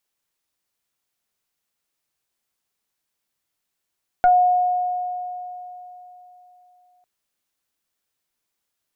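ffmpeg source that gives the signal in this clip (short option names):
-f lavfi -i "aevalsrc='0.316*pow(10,-3*t/3.54)*sin(2*PI*723*t+0.66*pow(10,-3*t/0.16)*sin(2*PI*0.99*723*t))':d=2.8:s=44100"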